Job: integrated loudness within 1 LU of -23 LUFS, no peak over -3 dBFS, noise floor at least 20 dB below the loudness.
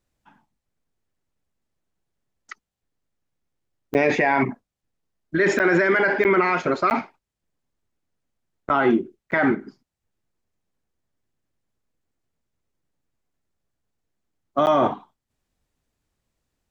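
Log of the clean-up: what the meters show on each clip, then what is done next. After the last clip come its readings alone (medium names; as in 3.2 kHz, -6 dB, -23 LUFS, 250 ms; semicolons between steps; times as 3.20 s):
dropouts 7; longest dropout 9.6 ms; loudness -21.0 LUFS; peak level -7.0 dBFS; loudness target -23.0 LUFS
-> interpolate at 3.94/5.59/6.24/6.90/8.69/9.31/14.66 s, 9.6 ms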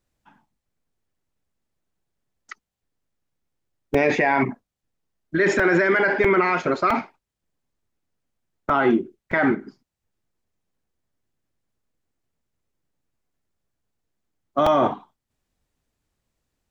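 dropouts 0; loudness -21.0 LUFS; peak level -7.0 dBFS; loudness target -23.0 LUFS
-> trim -2 dB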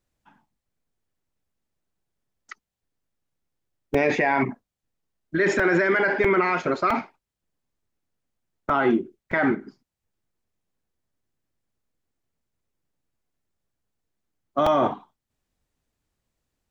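loudness -23.0 LUFS; peak level -9.0 dBFS; noise floor -86 dBFS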